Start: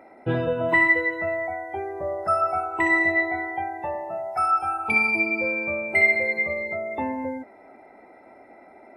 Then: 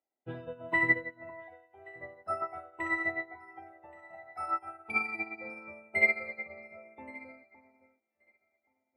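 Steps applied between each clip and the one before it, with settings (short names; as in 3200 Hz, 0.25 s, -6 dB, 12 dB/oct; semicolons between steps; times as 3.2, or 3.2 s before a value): echo with dull and thin repeats by turns 0.563 s, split 1400 Hz, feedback 65%, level -6 dB; upward expander 2.5:1, over -41 dBFS; gain -4.5 dB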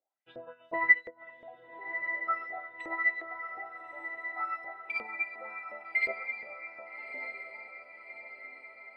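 LFO band-pass saw up 2.8 Hz 470–5300 Hz; diffused feedback echo 1.233 s, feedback 56%, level -8.5 dB; gain +6 dB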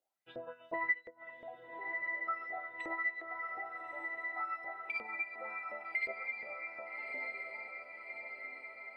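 compressor 2:1, threshold -40 dBFS, peak gain reduction 13.5 dB; gain +1 dB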